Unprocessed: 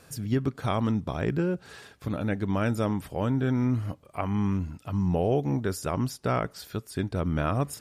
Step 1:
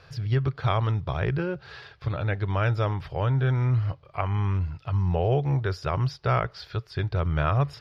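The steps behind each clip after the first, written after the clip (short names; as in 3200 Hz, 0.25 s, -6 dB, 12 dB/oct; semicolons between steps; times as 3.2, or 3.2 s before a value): EQ curve 140 Hz 0 dB, 230 Hz -22 dB, 370 Hz -7 dB, 1300 Hz -2 dB, 4900 Hz -3 dB, 7900 Hz -29 dB; gain +6 dB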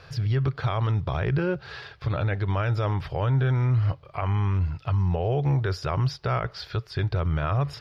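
limiter -20.5 dBFS, peak gain reduction 9 dB; gain +4 dB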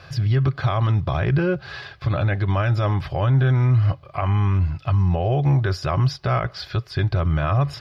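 notch comb 460 Hz; gain +5.5 dB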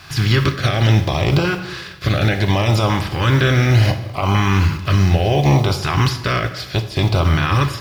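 spectral contrast lowered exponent 0.61; LFO notch saw up 0.69 Hz 500–1900 Hz; plate-style reverb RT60 1.1 s, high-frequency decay 0.75×, DRR 8 dB; gain +4 dB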